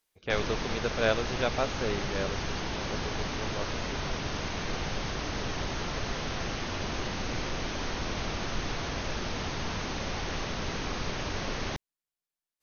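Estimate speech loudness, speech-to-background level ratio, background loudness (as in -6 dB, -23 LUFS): -33.5 LUFS, 0.5 dB, -34.0 LUFS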